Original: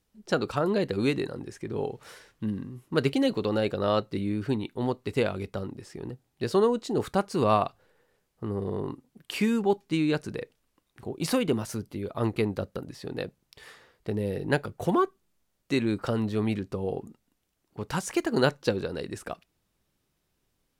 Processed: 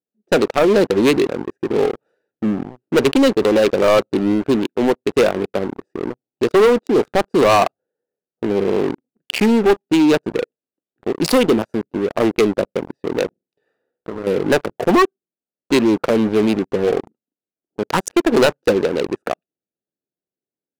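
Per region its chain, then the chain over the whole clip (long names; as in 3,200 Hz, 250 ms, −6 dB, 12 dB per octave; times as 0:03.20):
0:13.26–0:14.27: downward compressor, threshold −36 dBFS + flutter between parallel walls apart 8 metres, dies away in 0.35 s
whole clip: adaptive Wiener filter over 41 samples; high-pass filter 300 Hz 12 dB per octave; leveller curve on the samples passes 5; level +1 dB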